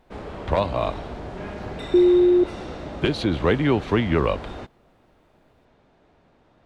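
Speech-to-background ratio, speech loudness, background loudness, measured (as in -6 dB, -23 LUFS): 14.0 dB, -21.5 LUFS, -35.5 LUFS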